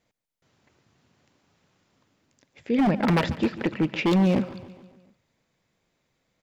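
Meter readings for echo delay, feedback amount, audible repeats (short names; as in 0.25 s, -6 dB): 0.142 s, 57%, 4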